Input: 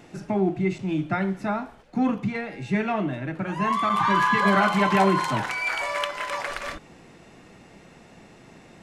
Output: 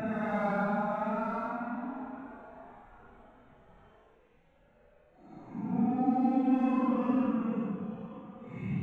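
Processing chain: local Wiener filter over 9 samples; Paulstretch 11×, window 0.05 s, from 1.45 s; trim -6 dB

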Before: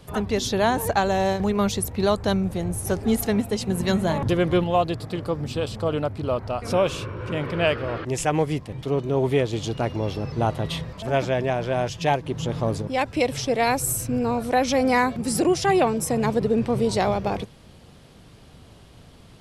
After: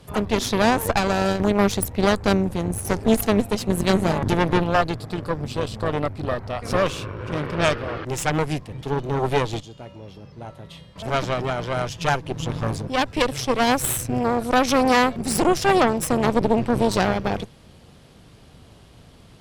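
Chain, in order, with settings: 9.60–10.96 s: feedback comb 190 Hz, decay 0.88 s, harmonics odd, mix 80%; Chebyshev shaper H 4 -8 dB, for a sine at -8 dBFS

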